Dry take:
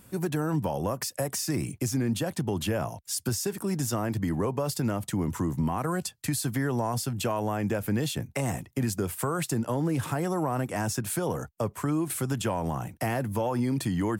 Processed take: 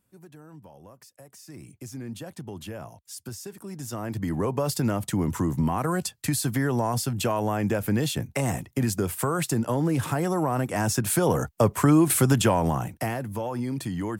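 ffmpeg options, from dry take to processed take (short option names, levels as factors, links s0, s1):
-af "volume=2.99,afade=t=in:st=1.31:d=0.78:silence=0.298538,afade=t=in:st=3.76:d=0.86:silence=0.251189,afade=t=in:st=10.7:d=1.05:silence=0.473151,afade=t=out:st=12.26:d=0.93:silence=0.251189"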